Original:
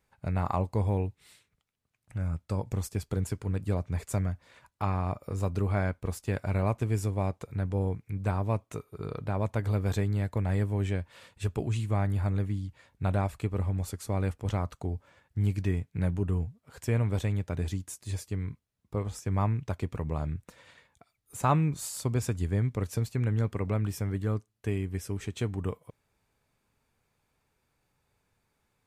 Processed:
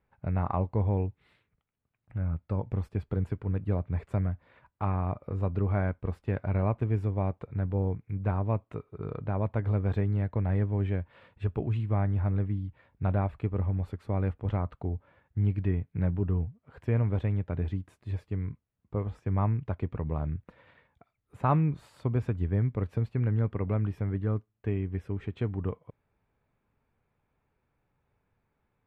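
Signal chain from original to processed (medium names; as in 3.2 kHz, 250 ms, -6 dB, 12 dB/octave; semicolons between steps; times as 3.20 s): distance through air 500 m; trim +1 dB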